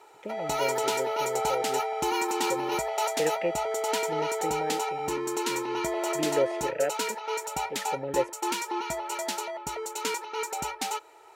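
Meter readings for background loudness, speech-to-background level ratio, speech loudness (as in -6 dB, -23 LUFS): -30.0 LUFS, -4.5 dB, -34.5 LUFS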